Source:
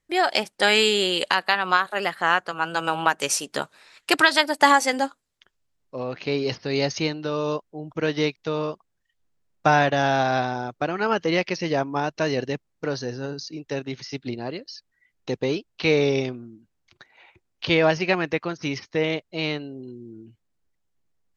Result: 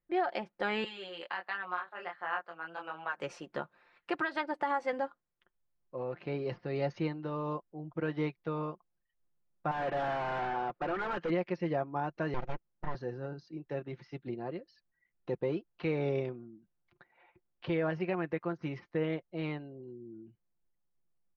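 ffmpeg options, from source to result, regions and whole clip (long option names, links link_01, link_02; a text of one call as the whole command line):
ffmpeg -i in.wav -filter_complex "[0:a]asettb=1/sr,asplit=3[link_01][link_02][link_03];[link_01]atrim=end=0.844[link_04];[link_02]atrim=start=0.84:end=3.17,asetpts=PTS-STARTPTS,afade=type=in:duration=0.004:curve=qsin,afade=type=out:start_time=2.326:duration=0.004:curve=qsin,highpass=frequency=1000:poles=1,flanger=delay=19.5:depth=4.8:speed=1.4[link_05];[link_03]atrim=start=3.166[link_06];[link_04][link_05]acrossfade=duration=0.004:curve1=hsin:curve2=qsin[link_07];[link_07][link_06]acrossfade=duration=0.004:curve1=qsin:curve2=hsin,asettb=1/sr,asplit=3[link_08][link_09][link_10];[link_08]atrim=end=9.714[link_11];[link_09]atrim=start=9.71:end=11.3,asetpts=PTS-STARTPTS,afade=type=in:duration=0.004:curve=qsin,afade=type=out:start_time=1.586:duration=0.004:curve=qsin,asplit=2[link_12][link_13];[link_13]highpass=frequency=720:poles=1,volume=18dB,asoftclip=type=tanh:threshold=-5dB[link_14];[link_12][link_14]amix=inputs=2:normalize=0,lowpass=frequency=5600:poles=1,volume=-6dB,asoftclip=type=hard:threshold=-23dB[link_15];[link_10]atrim=start=11.296[link_16];[link_11][link_15]acrossfade=duration=0.004:curve1=hsin:curve2=qsin[link_17];[link_17][link_16]acrossfade=duration=0.004:curve1=qsin:curve2=hsin,asettb=1/sr,asplit=3[link_18][link_19][link_20];[link_18]atrim=end=12.344[link_21];[link_19]atrim=start=12.34:end=12.95,asetpts=PTS-STARTPTS,afade=type=in:duration=0.004:curve=qsin,afade=type=out:start_time=0.606:duration=0.004:curve=qsin,equalizer=frequency=8100:width=1.2:gain=7.5,aeval=exprs='abs(val(0))':channel_layout=same[link_22];[link_20]atrim=start=12.946[link_23];[link_21][link_22]acrossfade=duration=0.004:curve1=hsin:curve2=qsin[link_24];[link_24][link_23]acrossfade=duration=0.004:curve1=qsin:curve2=hsin,lowpass=1600,aecho=1:1:5.7:0.49,alimiter=limit=-13dB:level=0:latency=1:release=176,volume=-8.5dB" out.wav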